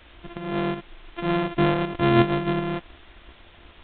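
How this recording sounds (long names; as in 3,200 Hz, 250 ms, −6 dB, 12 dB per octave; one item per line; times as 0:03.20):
a buzz of ramps at a fixed pitch in blocks of 128 samples
tremolo saw up 2.7 Hz, depth 50%
a quantiser's noise floor 8 bits, dither triangular
G.726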